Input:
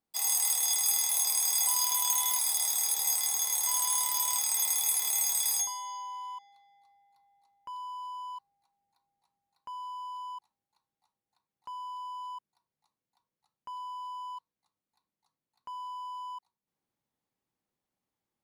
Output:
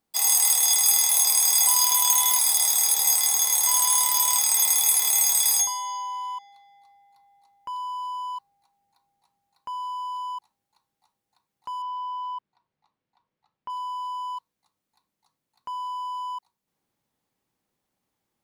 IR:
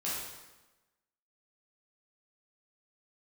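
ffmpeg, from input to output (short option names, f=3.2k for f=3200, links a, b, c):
-filter_complex "[0:a]asettb=1/sr,asplit=3[a][b][c];[a]atrim=end=11.824[d];[b]atrim=start=11.82:end=13.7,asetpts=PTS-STARTPTS,afade=t=in:d=0.004:c=qsin,afade=t=out:st=1.876:d=0.004:c=qsin,lowpass=3.2k[e];[c]atrim=start=13.696[f];[d][e]acrossfade=d=0.004:c1=hsin:c2=qsin[g];[g][f]acrossfade=d=0.004:c1=qsin:c2=hsin,volume=8dB"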